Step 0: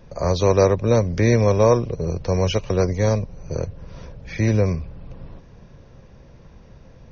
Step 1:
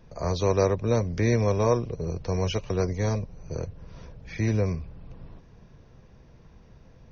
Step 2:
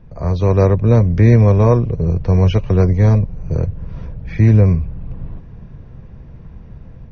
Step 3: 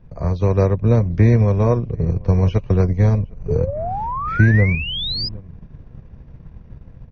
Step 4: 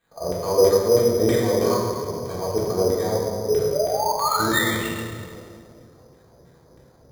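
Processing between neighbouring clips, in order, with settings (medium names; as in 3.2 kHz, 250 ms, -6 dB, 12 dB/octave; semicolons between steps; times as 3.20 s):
band-stop 550 Hz, Q 12; trim -6 dB
tone controls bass +9 dB, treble -15 dB; level rider gain up to 5.5 dB; trim +2.5 dB
echo from a far wall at 130 m, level -20 dB; painted sound rise, 3.48–5.29 s, 410–5100 Hz -20 dBFS; transient shaper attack +5 dB, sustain -6 dB; trim -4.5 dB
LFO band-pass saw down 3.1 Hz 350–2200 Hz; reverberation RT60 2.2 s, pre-delay 3 ms, DRR -6 dB; careless resampling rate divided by 8×, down filtered, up hold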